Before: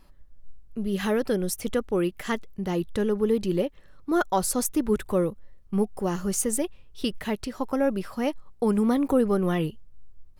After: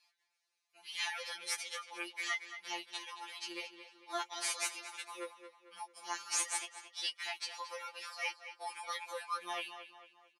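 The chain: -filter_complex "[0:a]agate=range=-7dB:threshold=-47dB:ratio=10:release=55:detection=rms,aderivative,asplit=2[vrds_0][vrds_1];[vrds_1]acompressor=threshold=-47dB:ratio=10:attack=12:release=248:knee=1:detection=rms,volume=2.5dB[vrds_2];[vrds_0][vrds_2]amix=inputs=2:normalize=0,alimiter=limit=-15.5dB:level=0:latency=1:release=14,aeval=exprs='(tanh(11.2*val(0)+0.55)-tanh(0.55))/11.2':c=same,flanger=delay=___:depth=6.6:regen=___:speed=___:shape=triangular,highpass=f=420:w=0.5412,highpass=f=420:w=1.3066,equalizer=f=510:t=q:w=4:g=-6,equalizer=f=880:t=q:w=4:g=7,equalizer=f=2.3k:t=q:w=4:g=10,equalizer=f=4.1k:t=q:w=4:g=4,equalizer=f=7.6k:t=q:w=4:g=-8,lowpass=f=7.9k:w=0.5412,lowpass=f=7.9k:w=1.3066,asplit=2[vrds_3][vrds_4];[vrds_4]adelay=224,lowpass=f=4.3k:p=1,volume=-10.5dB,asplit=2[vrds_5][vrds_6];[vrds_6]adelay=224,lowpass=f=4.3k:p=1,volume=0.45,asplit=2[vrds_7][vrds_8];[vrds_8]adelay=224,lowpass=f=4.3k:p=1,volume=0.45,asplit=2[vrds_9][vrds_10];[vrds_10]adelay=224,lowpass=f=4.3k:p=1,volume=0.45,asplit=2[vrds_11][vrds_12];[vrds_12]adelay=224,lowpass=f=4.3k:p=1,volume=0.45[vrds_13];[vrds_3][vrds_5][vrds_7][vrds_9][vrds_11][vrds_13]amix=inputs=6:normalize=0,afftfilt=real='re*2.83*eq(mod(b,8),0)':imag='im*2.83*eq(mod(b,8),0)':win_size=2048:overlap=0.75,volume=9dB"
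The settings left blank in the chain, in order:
6.3, 26, 0.74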